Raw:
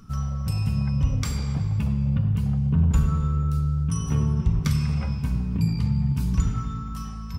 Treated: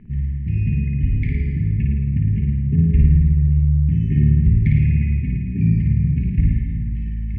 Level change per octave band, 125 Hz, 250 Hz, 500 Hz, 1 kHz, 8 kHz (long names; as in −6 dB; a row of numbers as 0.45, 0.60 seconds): +6.0 dB, +5.0 dB, +0.5 dB, below −40 dB, below −35 dB